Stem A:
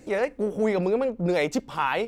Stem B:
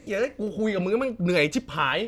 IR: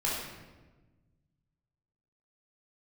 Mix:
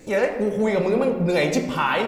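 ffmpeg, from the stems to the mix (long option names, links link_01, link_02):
-filter_complex "[0:a]volume=-1dB,asplit=2[link_01][link_02];[link_02]volume=-7dB[link_03];[1:a]acompressor=threshold=-25dB:ratio=6,highshelf=frequency=7200:gain=11,volume=-1,adelay=2.3,volume=-0.5dB[link_04];[2:a]atrim=start_sample=2205[link_05];[link_03][link_05]afir=irnorm=-1:irlink=0[link_06];[link_01][link_04][link_06]amix=inputs=3:normalize=0"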